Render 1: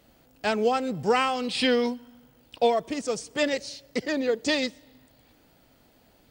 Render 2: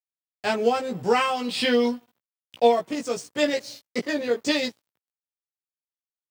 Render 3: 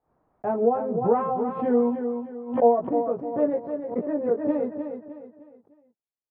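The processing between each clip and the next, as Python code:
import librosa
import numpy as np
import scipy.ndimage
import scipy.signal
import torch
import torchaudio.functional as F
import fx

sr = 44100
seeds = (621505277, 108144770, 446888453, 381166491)

y1 = np.sign(x) * np.maximum(np.abs(x) - 10.0 ** (-46.5 / 20.0), 0.0)
y1 = scipy.signal.sosfilt(scipy.signal.butter(4, 88.0, 'highpass', fs=sr, output='sos'), y1)
y1 = fx.doubler(y1, sr, ms=17.0, db=-2.5)
y2 = scipy.signal.sosfilt(scipy.signal.butter(4, 1000.0, 'lowpass', fs=sr, output='sos'), y1)
y2 = fx.echo_feedback(y2, sr, ms=306, feedback_pct=37, wet_db=-7.5)
y2 = fx.pre_swell(y2, sr, db_per_s=120.0)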